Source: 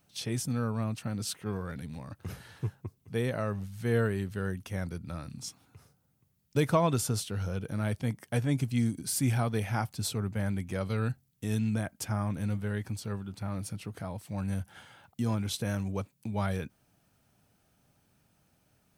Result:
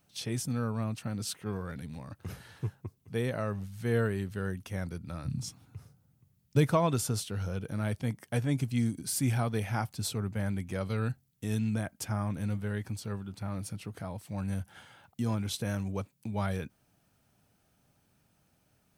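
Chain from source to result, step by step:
0:05.24–0:06.65: parametric band 110 Hz +14 dB → +6 dB 1.9 octaves
level −1 dB

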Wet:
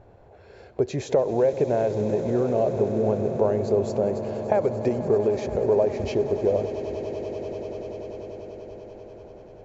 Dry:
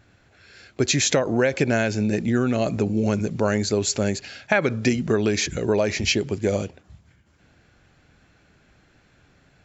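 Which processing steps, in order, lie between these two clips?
flat-topped bell 630 Hz +15.5 dB
downward compressor 1.5 to 1, threshold −36 dBFS, peak gain reduction 12 dB
spectral tilt −3 dB per octave
echo that builds up and dies away 97 ms, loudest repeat 8, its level −16.5 dB
level −5.5 dB

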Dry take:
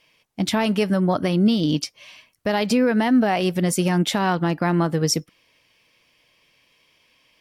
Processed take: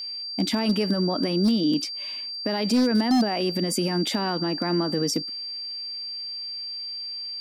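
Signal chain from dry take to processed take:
brickwall limiter −18.5 dBFS, peak gain reduction 8.5 dB
high-pass filter sweep 250 Hz → 100 Hz, 0:05.84–0:06.50
steady tone 4,700 Hz −31 dBFS
wave folding −14.5 dBFS

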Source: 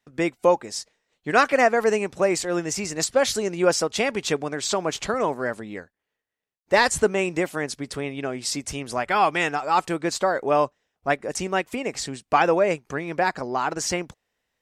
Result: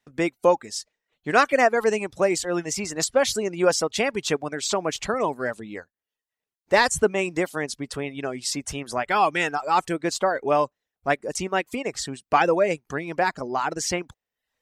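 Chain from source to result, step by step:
reverb reduction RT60 0.53 s

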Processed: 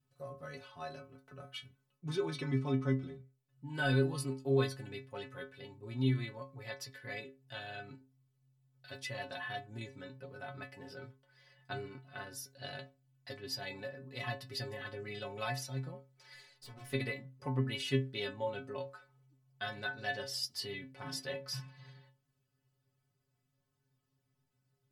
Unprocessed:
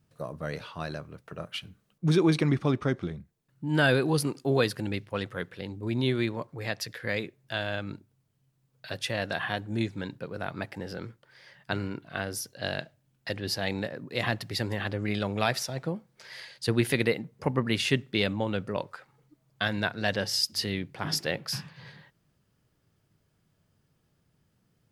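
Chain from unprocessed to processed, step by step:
0:16.34–0:16.93: tube saturation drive 38 dB, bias 0.65
stiff-string resonator 130 Hz, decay 0.34 s, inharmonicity 0.008
level +1 dB

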